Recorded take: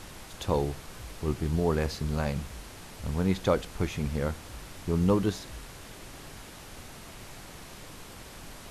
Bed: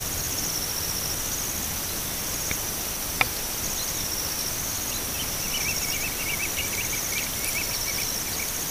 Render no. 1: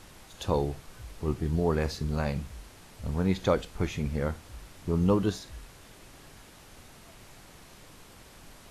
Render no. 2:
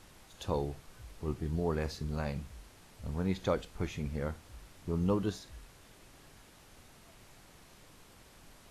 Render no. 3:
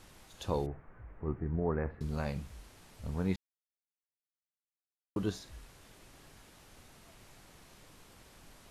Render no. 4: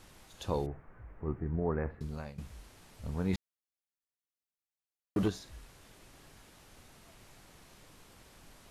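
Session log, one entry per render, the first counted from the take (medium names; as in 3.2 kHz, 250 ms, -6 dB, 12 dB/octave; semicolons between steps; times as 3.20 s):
noise print and reduce 6 dB
trim -6 dB
0.66–2.01 s: steep low-pass 2 kHz; 3.36–5.16 s: mute
1.91–2.38 s: fade out, to -15.5 dB; 3.33–5.28 s: waveshaping leveller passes 2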